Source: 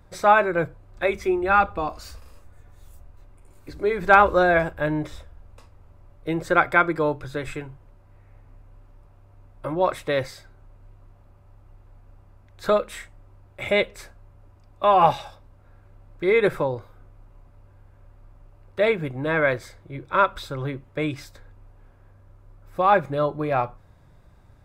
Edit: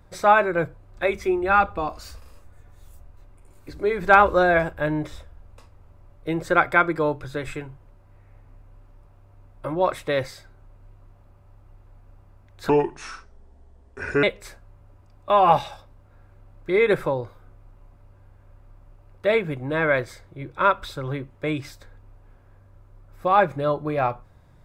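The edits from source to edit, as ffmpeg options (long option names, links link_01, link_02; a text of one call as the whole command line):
ffmpeg -i in.wav -filter_complex "[0:a]asplit=3[link_01][link_02][link_03];[link_01]atrim=end=12.694[link_04];[link_02]atrim=start=12.69:end=13.77,asetpts=PTS-STARTPTS,asetrate=30870,aresample=44100[link_05];[link_03]atrim=start=13.766[link_06];[link_04][link_05]acrossfade=duration=0.004:curve1=hsin:curve2=hsin[link_07];[link_07][link_06]acrossfade=duration=0.004:curve1=hsin:curve2=hsin" out.wav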